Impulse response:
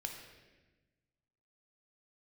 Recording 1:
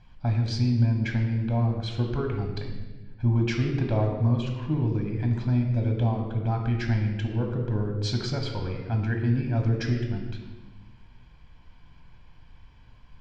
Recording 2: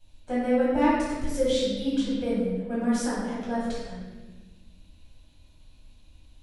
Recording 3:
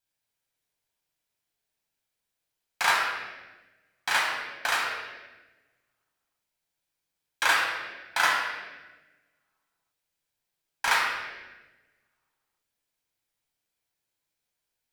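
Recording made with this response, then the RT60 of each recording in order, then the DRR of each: 1; 1.2, 1.2, 1.2 s; 2.0, -10.5, -3.5 dB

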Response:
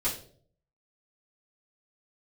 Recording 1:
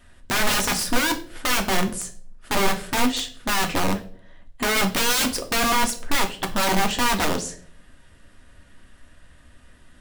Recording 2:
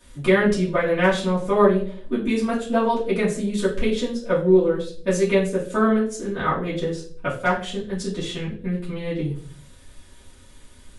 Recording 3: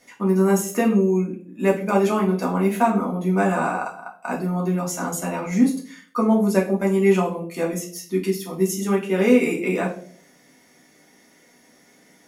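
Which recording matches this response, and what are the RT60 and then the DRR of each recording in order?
2; 0.55, 0.55, 0.55 s; 4.0, -10.0, -3.0 dB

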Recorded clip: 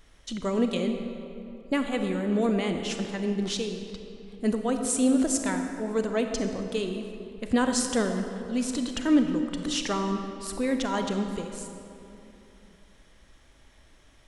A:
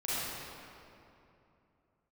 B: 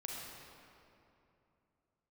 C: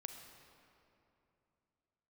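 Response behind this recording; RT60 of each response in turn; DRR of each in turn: C; 2.8, 2.8, 2.9 s; -11.0, -2.5, 5.0 dB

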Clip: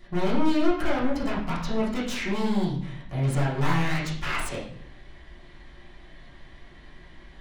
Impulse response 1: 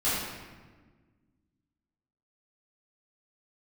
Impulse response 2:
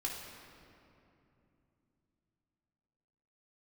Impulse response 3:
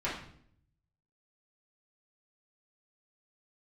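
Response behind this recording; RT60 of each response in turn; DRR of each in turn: 3; 1.4, 2.9, 0.65 s; -13.5, -1.5, -9.0 dB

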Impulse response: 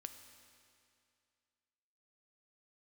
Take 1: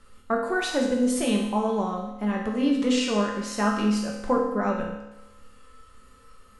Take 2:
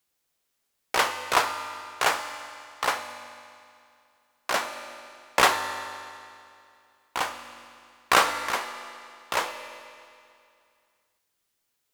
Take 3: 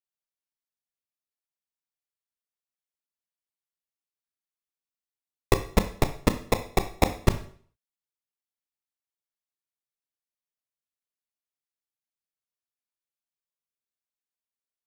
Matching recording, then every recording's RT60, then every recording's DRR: 2; 0.95, 2.4, 0.50 s; -2.0, 7.0, 8.5 dB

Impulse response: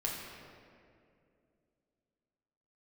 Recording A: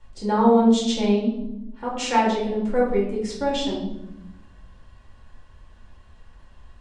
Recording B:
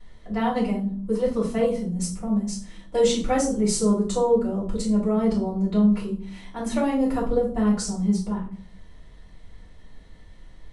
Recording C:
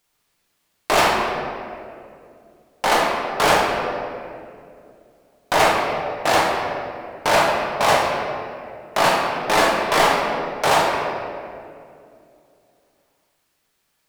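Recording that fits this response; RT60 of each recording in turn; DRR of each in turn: C; 0.90, 0.50, 2.4 s; -6.5, -8.5, -3.0 dB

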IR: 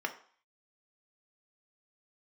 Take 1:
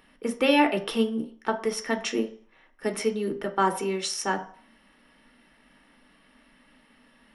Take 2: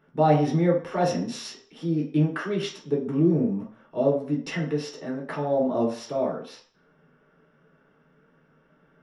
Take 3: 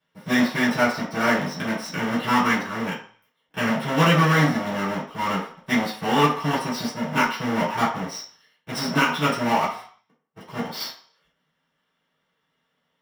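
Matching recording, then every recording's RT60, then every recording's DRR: 1; 0.50, 0.50, 0.50 s; 5.0, -3.0, -10.5 dB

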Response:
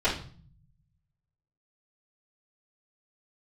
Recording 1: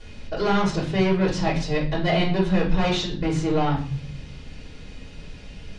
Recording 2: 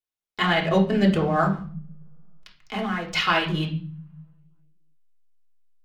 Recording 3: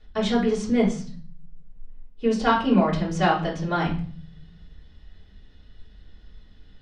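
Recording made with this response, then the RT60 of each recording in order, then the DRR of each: 1; 0.45, 0.45, 0.45 s; -14.0, -1.5, -8.5 dB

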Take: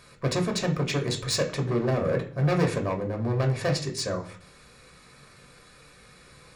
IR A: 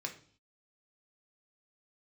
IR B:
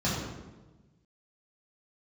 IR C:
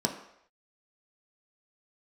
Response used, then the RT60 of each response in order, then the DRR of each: A; 0.50 s, 1.2 s, not exponential; 3.0, -8.5, 1.5 dB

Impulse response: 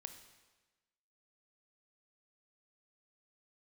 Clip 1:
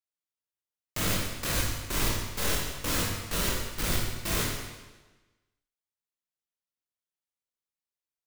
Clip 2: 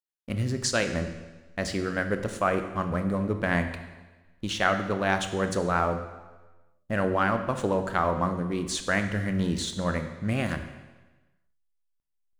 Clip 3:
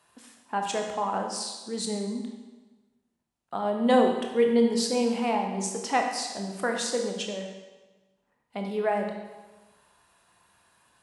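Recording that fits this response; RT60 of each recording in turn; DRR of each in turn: 2; 1.2, 1.2, 1.2 s; -2.5, 7.5, 2.5 dB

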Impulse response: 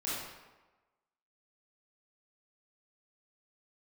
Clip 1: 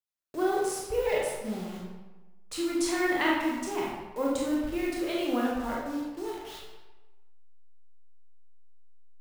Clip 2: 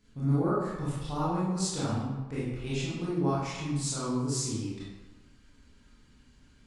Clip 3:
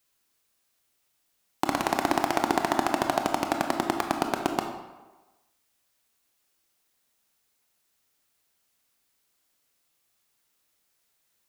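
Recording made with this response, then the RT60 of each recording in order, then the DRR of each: 2; 1.2, 1.2, 1.2 s; -4.0, -9.5, 4.0 dB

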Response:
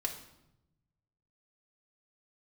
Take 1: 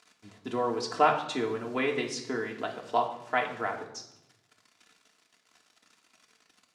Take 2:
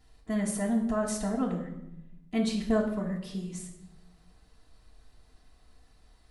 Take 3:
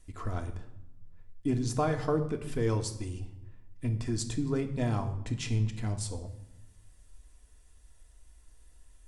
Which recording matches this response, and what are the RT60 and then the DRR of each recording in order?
1; 0.85, 0.85, 0.90 s; -1.0, -5.5, 3.5 dB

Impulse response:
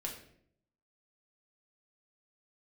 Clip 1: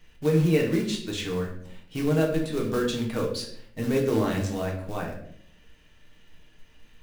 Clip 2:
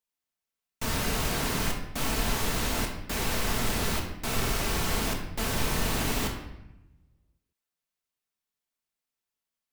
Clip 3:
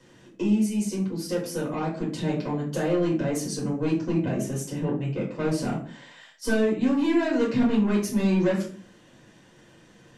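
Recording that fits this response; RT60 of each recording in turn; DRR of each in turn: 1; 0.65, 0.90, 0.45 s; -1.5, 0.0, -5.0 dB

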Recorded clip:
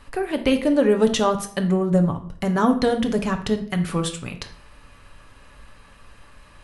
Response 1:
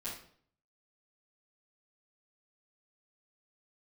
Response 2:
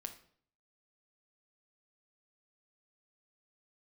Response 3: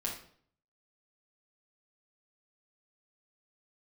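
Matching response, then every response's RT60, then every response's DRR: 2; 0.55, 0.55, 0.55 s; -13.0, 5.0, -4.5 dB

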